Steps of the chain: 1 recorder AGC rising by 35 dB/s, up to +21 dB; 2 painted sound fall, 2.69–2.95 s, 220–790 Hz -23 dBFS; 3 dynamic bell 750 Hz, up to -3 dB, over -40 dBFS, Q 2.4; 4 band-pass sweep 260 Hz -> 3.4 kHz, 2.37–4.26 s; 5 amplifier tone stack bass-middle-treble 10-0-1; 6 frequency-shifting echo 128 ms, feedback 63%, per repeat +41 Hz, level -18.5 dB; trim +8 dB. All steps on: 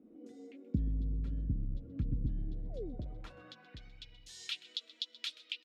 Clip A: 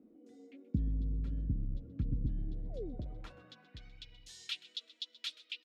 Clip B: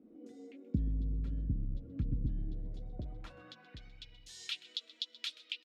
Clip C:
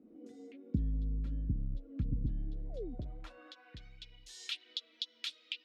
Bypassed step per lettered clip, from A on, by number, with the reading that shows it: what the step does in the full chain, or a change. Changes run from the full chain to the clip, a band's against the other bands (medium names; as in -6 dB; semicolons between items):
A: 1, momentary loudness spread change +2 LU; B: 2, 500 Hz band -4.5 dB; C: 6, echo-to-direct -16.5 dB to none